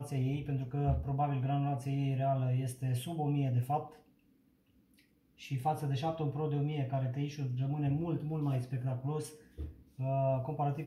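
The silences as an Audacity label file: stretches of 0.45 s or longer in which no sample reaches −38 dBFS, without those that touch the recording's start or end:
3.830000	5.450000	silence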